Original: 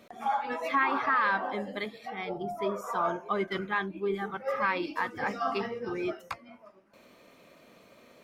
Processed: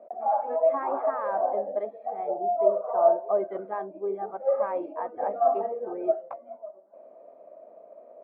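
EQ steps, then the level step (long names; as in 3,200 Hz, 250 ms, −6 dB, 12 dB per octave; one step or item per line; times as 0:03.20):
high-pass filter 400 Hz 12 dB per octave
low-pass with resonance 650 Hz, resonance Q 7.3
high-frequency loss of the air 150 metres
0.0 dB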